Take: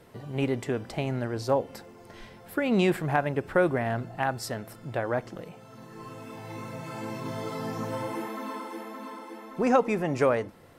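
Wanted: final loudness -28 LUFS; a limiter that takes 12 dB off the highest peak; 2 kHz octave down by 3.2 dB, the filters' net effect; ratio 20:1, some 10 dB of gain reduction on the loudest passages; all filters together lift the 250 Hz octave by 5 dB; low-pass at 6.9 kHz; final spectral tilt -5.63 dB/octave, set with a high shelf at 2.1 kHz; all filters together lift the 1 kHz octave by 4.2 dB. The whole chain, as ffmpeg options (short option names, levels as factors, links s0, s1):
-af "lowpass=6900,equalizer=f=250:t=o:g=6,equalizer=f=1000:t=o:g=7.5,equalizer=f=2000:t=o:g=-5.5,highshelf=f=2100:g=-5,acompressor=threshold=0.0631:ratio=20,volume=2.66,alimiter=limit=0.133:level=0:latency=1"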